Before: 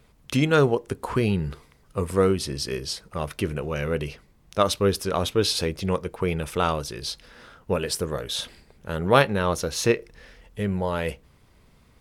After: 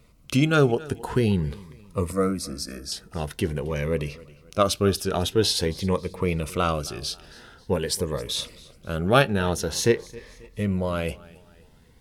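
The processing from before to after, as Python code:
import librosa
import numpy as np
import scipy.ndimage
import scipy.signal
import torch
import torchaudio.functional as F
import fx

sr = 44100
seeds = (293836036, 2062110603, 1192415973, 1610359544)

p1 = fx.fixed_phaser(x, sr, hz=600.0, stages=8, at=(2.12, 2.92))
p2 = p1 + fx.echo_feedback(p1, sr, ms=269, feedback_pct=40, wet_db=-21.0, dry=0)
p3 = fx.notch_cascade(p2, sr, direction='rising', hz=0.47)
y = p3 * 10.0 ** (1.5 / 20.0)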